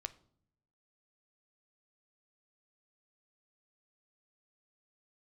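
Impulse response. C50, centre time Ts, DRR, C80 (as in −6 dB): 18.0 dB, 3 ms, 11.5 dB, 22.0 dB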